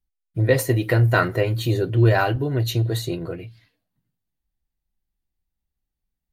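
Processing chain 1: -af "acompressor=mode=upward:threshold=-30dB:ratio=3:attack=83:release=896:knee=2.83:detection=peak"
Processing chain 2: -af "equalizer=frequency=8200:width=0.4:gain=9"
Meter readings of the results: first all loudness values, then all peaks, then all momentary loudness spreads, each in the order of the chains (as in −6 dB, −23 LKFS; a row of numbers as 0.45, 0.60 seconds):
−21.0, −20.0 LKFS; −5.0, −4.0 dBFS; 12, 12 LU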